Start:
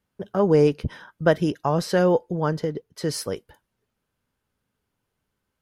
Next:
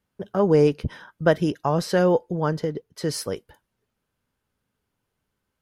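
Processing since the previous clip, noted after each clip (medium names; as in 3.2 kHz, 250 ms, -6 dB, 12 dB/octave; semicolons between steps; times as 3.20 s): no audible change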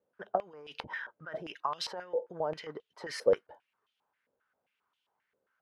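compressor with a negative ratio -27 dBFS, ratio -1; step-sequenced band-pass 7.5 Hz 520–3200 Hz; trim +4 dB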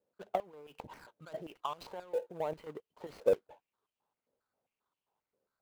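median filter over 25 samples; in parallel at -7 dB: short-mantissa float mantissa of 2-bit; on the sum: trim -5 dB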